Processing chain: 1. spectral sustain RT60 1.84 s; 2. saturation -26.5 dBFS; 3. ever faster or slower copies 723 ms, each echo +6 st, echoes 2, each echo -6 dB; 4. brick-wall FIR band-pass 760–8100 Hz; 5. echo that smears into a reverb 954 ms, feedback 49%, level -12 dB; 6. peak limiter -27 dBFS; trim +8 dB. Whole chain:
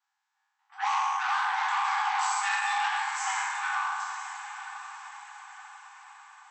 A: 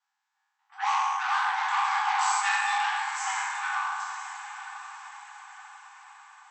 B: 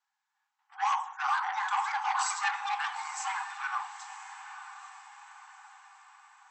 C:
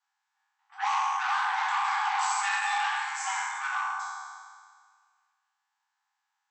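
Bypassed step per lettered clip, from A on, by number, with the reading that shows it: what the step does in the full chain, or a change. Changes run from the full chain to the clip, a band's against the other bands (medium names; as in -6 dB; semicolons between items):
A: 6, crest factor change +3.0 dB; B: 1, crest factor change +3.5 dB; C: 5, momentary loudness spread change -9 LU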